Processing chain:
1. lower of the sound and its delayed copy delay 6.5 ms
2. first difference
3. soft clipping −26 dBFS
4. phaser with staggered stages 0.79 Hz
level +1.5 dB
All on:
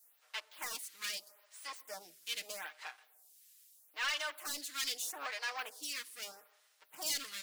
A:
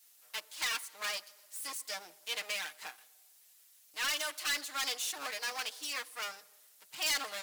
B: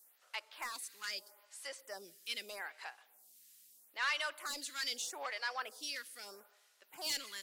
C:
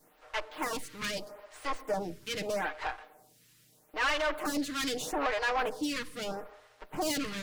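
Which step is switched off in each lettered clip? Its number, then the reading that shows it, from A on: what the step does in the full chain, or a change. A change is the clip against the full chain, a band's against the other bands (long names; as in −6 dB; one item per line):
4, change in crest factor −7.0 dB
1, 8 kHz band −4.5 dB
2, 250 Hz band +17.5 dB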